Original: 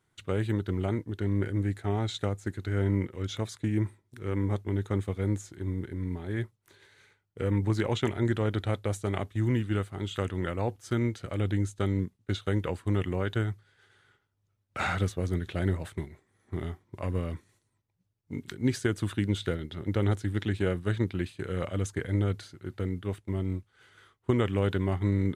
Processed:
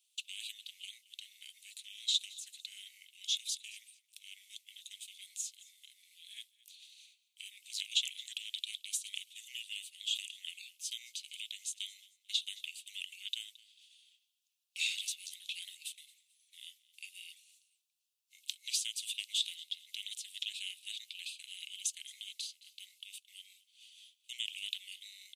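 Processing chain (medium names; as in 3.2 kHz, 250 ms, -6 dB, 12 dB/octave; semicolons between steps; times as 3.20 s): Chebyshev high-pass 2.6 kHz, order 6; on a send: feedback delay 221 ms, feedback 29%, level -21 dB; on the sum: trim +8 dB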